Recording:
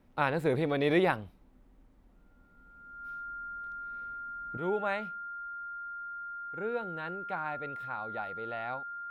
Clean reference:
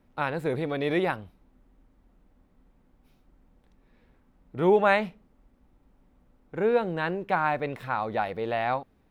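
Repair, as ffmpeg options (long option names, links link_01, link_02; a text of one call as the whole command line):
ffmpeg -i in.wav -af "bandreject=frequency=1400:width=30,asetnsamples=nb_out_samples=441:pad=0,asendcmd='4.57 volume volume 11.5dB',volume=0dB" out.wav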